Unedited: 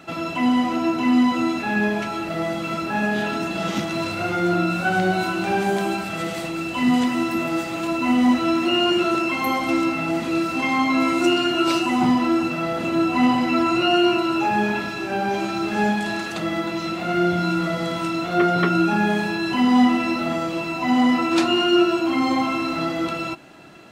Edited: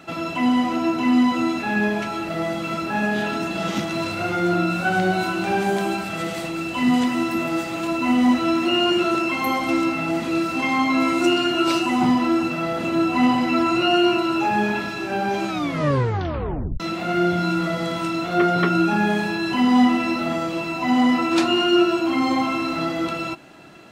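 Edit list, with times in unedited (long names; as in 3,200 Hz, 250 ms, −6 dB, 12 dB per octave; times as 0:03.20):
0:15.48: tape stop 1.32 s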